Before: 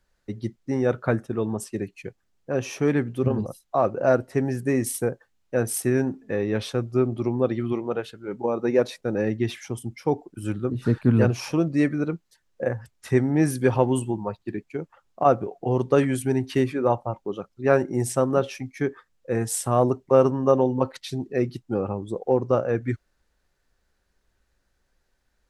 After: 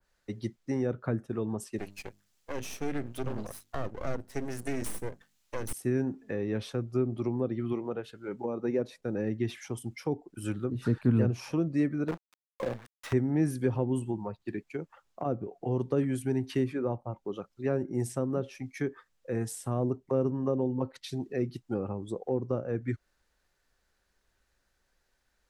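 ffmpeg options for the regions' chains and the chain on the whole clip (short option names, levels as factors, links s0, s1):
-filter_complex "[0:a]asettb=1/sr,asplit=3[s0][s1][s2];[s0]atrim=end=1.784[s3];[s1]atrim=start=1.78:end=5.73,asetpts=PTS-STARTPTS,afade=t=in:d=0.004:c=qsin,afade=t=out:st=3.946:d=0.004:c=qsin,highshelf=f=2500:g=11,bandreject=f=50:t=h:w=6,bandreject=f=100:t=h:w=6,bandreject=f=150:t=h:w=6,bandreject=f=200:t=h:w=6,bandreject=f=250:t=h:w=6,aeval=exprs='max(val(0),0)':c=same[s4];[s2]atrim=start=5.726[s5];[s3][s4]acrossfade=d=0.004:c1=hsin:c2=qsin[s6];[s6][s5]acrossfade=d=0.004:c1=qsin:c2=hsin,asettb=1/sr,asplit=3[s7][s8][s9];[s7]atrim=end=12.084[s10];[s8]atrim=start=12.08:end=13.13,asetpts=PTS-STARTPTS,afade=t=in:d=0.004:c=qsin,afade=t=out:st=1.046:d=0.004:c=qsin,equalizer=f=2000:w=0.76:g=-3.5,acrusher=bits=5:dc=4:mix=0:aa=0.000001,asplit=2[s11][s12];[s12]highpass=f=720:p=1,volume=8.91,asoftclip=type=tanh:threshold=0.266[s13];[s11][s13]amix=inputs=2:normalize=0,lowpass=f=1700:p=1,volume=0.501[s14];[s9]atrim=start=13.126[s15];[s10][s14]acrossfade=d=0.004:c1=hsin:c2=qsin[s16];[s16][s15]acrossfade=d=0.004:c1=qsin:c2=hsin,lowshelf=f=470:g=-6,acrossover=split=380[s17][s18];[s18]acompressor=threshold=0.0112:ratio=5[s19];[s17][s19]amix=inputs=2:normalize=0,adynamicequalizer=threshold=0.00447:dfrequency=2200:dqfactor=0.7:tfrequency=2200:tqfactor=0.7:attack=5:release=100:ratio=0.375:range=2:mode=cutabove:tftype=highshelf"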